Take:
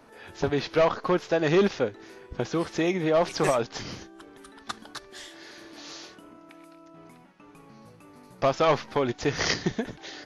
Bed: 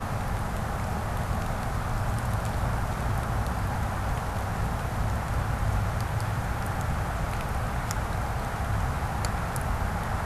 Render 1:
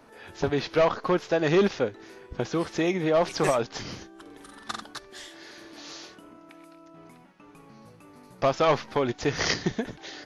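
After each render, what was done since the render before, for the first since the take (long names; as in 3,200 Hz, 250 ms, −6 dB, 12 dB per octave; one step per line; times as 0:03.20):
0:04.21–0:04.82: flutter between parallel walls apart 7.7 metres, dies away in 0.72 s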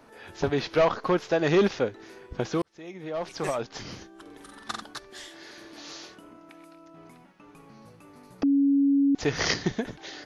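0:02.62–0:04.28: fade in
0:08.43–0:09.15: beep over 279 Hz −18 dBFS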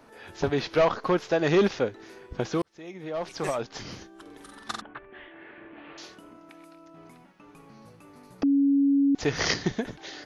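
0:04.81–0:05.98: Butterworth low-pass 2,800 Hz 48 dB per octave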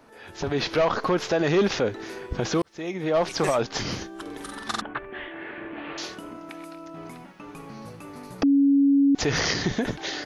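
brickwall limiter −25 dBFS, peak gain reduction 11.5 dB
automatic gain control gain up to 10 dB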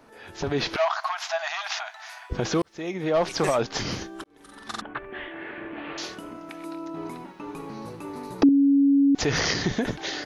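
0:00.76–0:02.30: linear-phase brick-wall high-pass 620 Hz
0:04.24–0:05.12: fade in
0:06.64–0:08.49: hollow resonant body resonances 360/920/3,900 Hz, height 9 dB, ringing for 20 ms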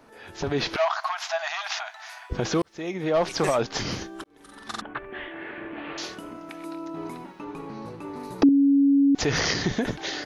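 0:07.44–0:08.20: high-shelf EQ 6,700 Hz −11.5 dB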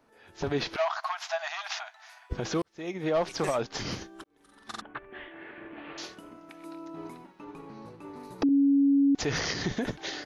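brickwall limiter −18.5 dBFS, peak gain reduction 9 dB
expander for the loud parts 1.5 to 1, over −44 dBFS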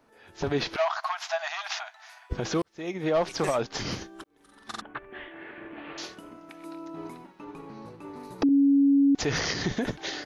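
level +2 dB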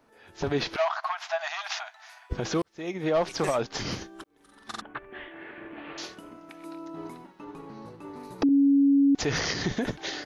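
0:00.89–0:01.41: bass and treble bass +9 dB, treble −7 dB
0:06.78–0:08.16: notch filter 2,400 Hz
0:08.66–0:09.14: envelope flattener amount 50%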